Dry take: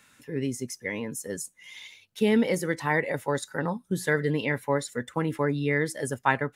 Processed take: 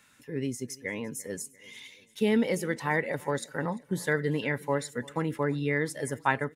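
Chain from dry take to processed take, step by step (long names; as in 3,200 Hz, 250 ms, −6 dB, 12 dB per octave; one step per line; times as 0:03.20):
repeating echo 344 ms, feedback 55%, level −22.5 dB
level −2.5 dB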